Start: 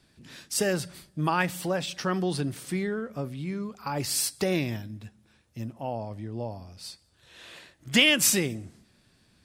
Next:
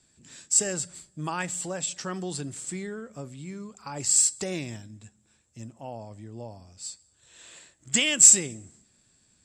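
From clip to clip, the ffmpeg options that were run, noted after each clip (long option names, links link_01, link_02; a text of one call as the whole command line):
ffmpeg -i in.wav -af "lowpass=frequency=7600:width_type=q:width=16,volume=-6dB" out.wav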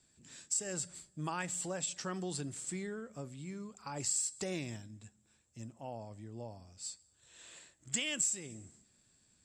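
ffmpeg -i in.wav -af "acompressor=threshold=-26dB:ratio=6,volume=-5.5dB" out.wav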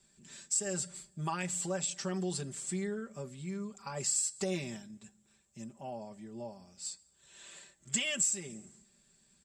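ffmpeg -i in.wav -af "aecho=1:1:5.1:0.88" out.wav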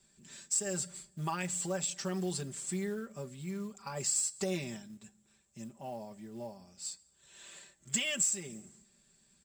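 ffmpeg -i in.wav -af "acrusher=bits=6:mode=log:mix=0:aa=0.000001" out.wav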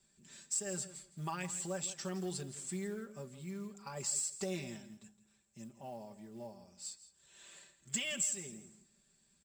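ffmpeg -i in.wav -af "aecho=1:1:165|330:0.178|0.032,volume=-4.5dB" out.wav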